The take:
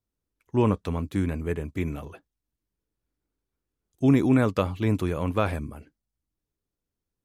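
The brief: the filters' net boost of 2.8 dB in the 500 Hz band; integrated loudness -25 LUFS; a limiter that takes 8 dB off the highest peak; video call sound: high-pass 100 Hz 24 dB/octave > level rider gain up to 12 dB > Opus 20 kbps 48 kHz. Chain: peaking EQ 500 Hz +3.5 dB; peak limiter -16 dBFS; high-pass 100 Hz 24 dB/octave; level rider gain up to 12 dB; trim +4.5 dB; Opus 20 kbps 48 kHz

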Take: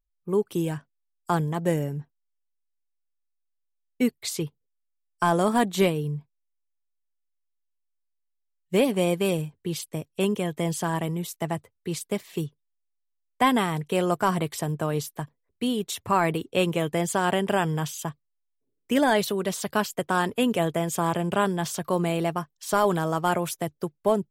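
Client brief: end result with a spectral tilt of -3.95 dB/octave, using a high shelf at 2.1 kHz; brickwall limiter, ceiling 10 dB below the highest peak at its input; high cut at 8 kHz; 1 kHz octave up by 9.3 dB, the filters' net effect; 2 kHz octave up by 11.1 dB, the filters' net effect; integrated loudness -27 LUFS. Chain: low-pass 8 kHz; peaking EQ 1 kHz +8 dB; peaking EQ 2 kHz +7.5 dB; treble shelf 2.1 kHz +7.5 dB; trim -3.5 dB; peak limiter -12.5 dBFS

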